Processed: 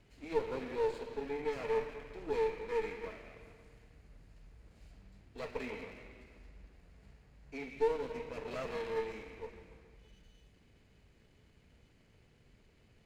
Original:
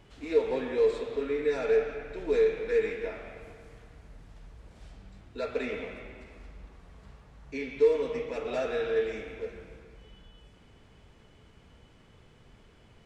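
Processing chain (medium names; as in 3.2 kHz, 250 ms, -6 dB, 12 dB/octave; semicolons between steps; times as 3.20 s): comb filter that takes the minimum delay 0.44 ms; trim -7.5 dB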